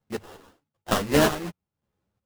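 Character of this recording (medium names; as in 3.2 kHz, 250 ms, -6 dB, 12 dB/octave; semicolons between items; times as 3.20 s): a buzz of ramps at a fixed pitch in blocks of 16 samples; chopped level 1.1 Hz, depth 60%, duty 40%; aliases and images of a low sample rate 2.3 kHz, jitter 20%; a shimmering, thickened sound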